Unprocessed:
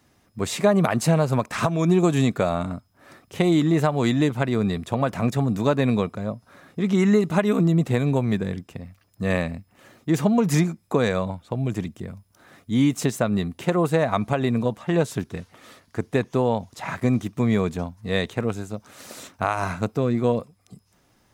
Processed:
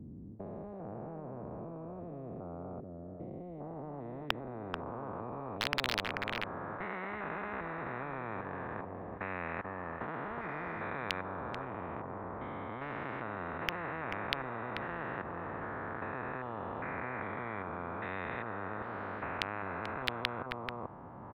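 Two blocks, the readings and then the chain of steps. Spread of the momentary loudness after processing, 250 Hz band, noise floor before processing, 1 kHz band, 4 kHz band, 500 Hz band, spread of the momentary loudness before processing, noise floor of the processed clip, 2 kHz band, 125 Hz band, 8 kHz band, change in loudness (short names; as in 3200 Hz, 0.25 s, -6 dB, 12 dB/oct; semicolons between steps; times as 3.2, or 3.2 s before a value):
8 LU, -22.0 dB, -63 dBFS, -9.0 dB, -6.5 dB, -17.5 dB, 14 LU, -47 dBFS, -6.5 dB, -21.5 dB, -22.5 dB, -16.5 dB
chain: stepped spectrum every 0.4 s; HPF 130 Hz 6 dB/oct; high shelf 8600 Hz -10.5 dB; in parallel at +0.5 dB: compressor 16:1, threshold -38 dBFS, peak gain reduction 20 dB; on the sum: low-pass sweep 190 Hz -> 1000 Hz, 3.38–6.71; wrapped overs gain 11 dB; air absorption 400 m; echo 0.437 s -13.5 dB; spectral compressor 10:1; gain +3 dB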